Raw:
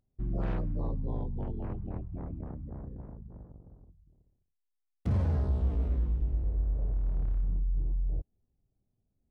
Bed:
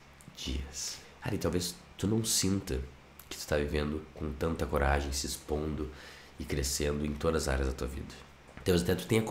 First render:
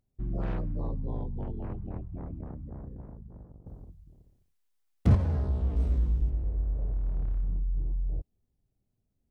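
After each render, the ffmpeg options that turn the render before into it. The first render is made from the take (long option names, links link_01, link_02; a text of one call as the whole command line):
ffmpeg -i in.wav -filter_complex "[0:a]asettb=1/sr,asplit=3[link_01][link_02][link_03];[link_01]atrim=end=5.764[link_04];[link_02]atrim=start=5.76:end=6.3,asetpts=PTS-STARTPTS,afade=type=in:duration=0.004:curve=qsin,afade=type=out:start_time=0.536:duration=0.004:curve=qsin,bass=frequency=250:gain=3,treble=frequency=4000:gain=13[link_05];[link_03]atrim=start=6.296[link_06];[link_04][link_05]acrossfade=duration=0.004:curve1=hsin:curve2=qsin[link_07];[link_07][link_06]acrossfade=duration=0.004:curve1=qsin:curve2=hsin,asplit=3[link_08][link_09][link_10];[link_08]atrim=end=3.662[link_11];[link_09]atrim=start=3.658:end=5.152,asetpts=PTS-STARTPTS,volume=8.5dB[link_12];[link_10]atrim=start=5.148[link_13];[link_11][link_12]acrossfade=duration=0.004:curve1=hsin:curve2=hsin[link_14];[link_14][link_13]acrossfade=duration=0.004:curve1=hsin:curve2=hsin" out.wav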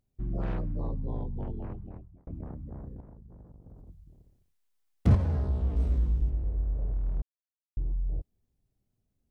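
ffmpeg -i in.wav -filter_complex "[0:a]asettb=1/sr,asplit=3[link_01][link_02][link_03];[link_01]atrim=end=3.004[link_04];[link_02]atrim=start=3:end=3.89,asetpts=PTS-STARTPTS,afade=type=in:duration=0.004:curve=qsin,afade=type=out:start_time=0.886:duration=0.004:curve=qsin,acompressor=threshold=-45dB:ratio=6:attack=3.2:release=140:knee=1:detection=peak[link_05];[link_03]atrim=start=3.886[link_06];[link_04][link_05]acrossfade=duration=0.004:curve1=hsin:curve2=qsin[link_07];[link_07][link_06]acrossfade=duration=0.004:curve1=qsin:curve2=hsin,asplit=4[link_08][link_09][link_10][link_11];[link_08]atrim=end=2.27,asetpts=PTS-STARTPTS,afade=type=out:start_time=1.55:duration=0.72[link_12];[link_09]atrim=start=2.27:end=7.22,asetpts=PTS-STARTPTS,afade=type=in:duration=0.004:curve=hsin,afade=type=out:start_time=4.946:duration=0.004:curve=hsin[link_13];[link_10]atrim=start=7.22:end=7.77,asetpts=PTS-STARTPTS,volume=0[link_14];[link_11]atrim=start=7.77,asetpts=PTS-STARTPTS,afade=type=in:duration=0.004:curve=hsin[link_15];[link_12][link_13][link_14][link_15]concat=n=4:v=0:a=1" out.wav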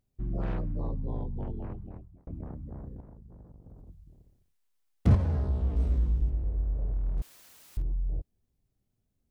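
ffmpeg -i in.wav -filter_complex "[0:a]asettb=1/sr,asplit=3[link_01][link_02][link_03];[link_01]atrim=end=7.174[link_04];[link_02]atrim=start=7.17:end=7.82,asetpts=PTS-STARTPTS,afade=type=in:duration=0.004:curve=qsin,afade=type=out:start_time=0.646:duration=0.004:curve=qsin,aeval=exprs='val(0)+0.5*0.00668*sgn(val(0))':channel_layout=same[link_05];[link_03]atrim=start=7.816[link_06];[link_04][link_05]acrossfade=duration=0.004:curve1=hsin:curve2=qsin[link_07];[link_07][link_06]acrossfade=duration=0.004:curve1=qsin:curve2=hsin" out.wav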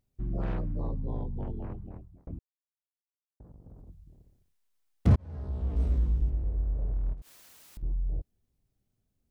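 ffmpeg -i in.wav -filter_complex "[0:a]asettb=1/sr,asplit=3[link_01][link_02][link_03];[link_01]atrim=end=7.134[link_04];[link_02]atrim=start=7.13:end=7.83,asetpts=PTS-STARTPTS,afade=type=in:duration=0.004:curve=qsin,afade=type=out:start_time=0.696:duration=0.004:curve=qsin,acompressor=threshold=-39dB:ratio=16:attack=3.2:release=140:knee=1:detection=peak[link_05];[link_03]atrim=start=7.826[link_06];[link_04][link_05]acrossfade=duration=0.004:curve1=hsin:curve2=qsin[link_07];[link_07][link_06]acrossfade=duration=0.004:curve1=qsin:curve2=hsin,asplit=4[link_08][link_09][link_10][link_11];[link_08]atrim=end=2.39,asetpts=PTS-STARTPTS,afade=type=out:start_time=2.386:duration=0.004:curve=hsin[link_12];[link_09]atrim=start=2.39:end=3.4,asetpts=PTS-STARTPTS,volume=0[link_13];[link_10]atrim=start=3.4:end=5.16,asetpts=PTS-STARTPTS,afade=type=in:duration=0.004:curve=hsin,afade=type=out:start_time=1.756:duration=0.004:curve=hsin[link_14];[link_11]atrim=start=5.16,asetpts=PTS-STARTPTS,afade=type=in:duration=0.67[link_15];[link_12][link_13][link_14][link_15]concat=n=4:v=0:a=1" out.wav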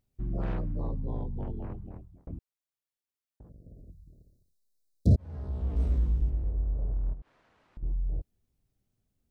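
ffmpeg -i in.wav -filter_complex "[0:a]asettb=1/sr,asplit=3[link_01][link_02][link_03];[link_01]atrim=end=3.494[link_04];[link_02]atrim=start=3.49:end=5.17,asetpts=PTS-STARTPTS,afade=type=in:duration=0.004:curve=qsin,afade=type=out:start_time=1.676:duration=0.004:curve=qsin,asuperstop=centerf=1600:order=20:qfactor=0.52[link_05];[link_03]atrim=start=5.166[link_06];[link_04][link_05]acrossfade=duration=0.004:curve1=hsin:curve2=qsin[link_07];[link_07][link_06]acrossfade=duration=0.004:curve1=qsin:curve2=hsin,asettb=1/sr,asplit=3[link_08][link_09][link_10];[link_08]atrim=end=6.514[link_11];[link_09]atrim=start=6.51:end=7.87,asetpts=PTS-STARTPTS,afade=type=in:duration=0.004:curve=qsin,afade=type=out:start_time=1.356:duration=0.004:curve=qsin,lowpass=1500[link_12];[link_10]atrim=start=7.866[link_13];[link_11][link_12]acrossfade=duration=0.004:curve1=hsin:curve2=qsin[link_14];[link_14][link_13]acrossfade=duration=0.004:curve1=qsin:curve2=hsin" out.wav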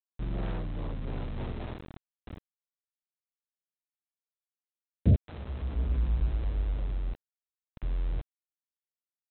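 ffmpeg -i in.wav -af "aresample=8000,aeval=exprs='val(0)*gte(abs(val(0)),0.0141)':channel_layout=same,aresample=44100,tremolo=f=0.62:d=0.28" out.wav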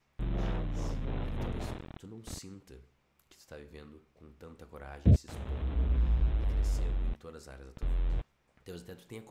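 ffmpeg -i in.wav -i bed.wav -filter_complex "[1:a]volume=-18dB[link_01];[0:a][link_01]amix=inputs=2:normalize=0" out.wav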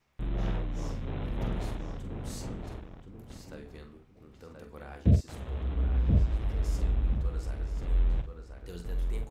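ffmpeg -i in.wav -filter_complex "[0:a]asplit=2[link_01][link_02];[link_02]adelay=46,volume=-8.5dB[link_03];[link_01][link_03]amix=inputs=2:normalize=0,asplit=2[link_04][link_05];[link_05]adelay=1029,lowpass=frequency=2500:poles=1,volume=-4dB,asplit=2[link_06][link_07];[link_07]adelay=1029,lowpass=frequency=2500:poles=1,volume=0.24,asplit=2[link_08][link_09];[link_09]adelay=1029,lowpass=frequency=2500:poles=1,volume=0.24[link_10];[link_04][link_06][link_08][link_10]amix=inputs=4:normalize=0" out.wav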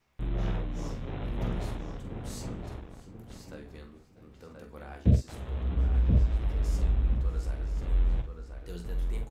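ffmpeg -i in.wav -filter_complex "[0:a]asplit=2[link_01][link_02];[link_02]adelay=17,volume=-10.5dB[link_03];[link_01][link_03]amix=inputs=2:normalize=0,aecho=1:1:647:0.106" out.wav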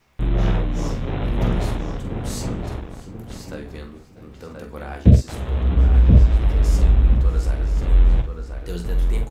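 ffmpeg -i in.wav -af "volume=11.5dB,alimiter=limit=-2dB:level=0:latency=1" out.wav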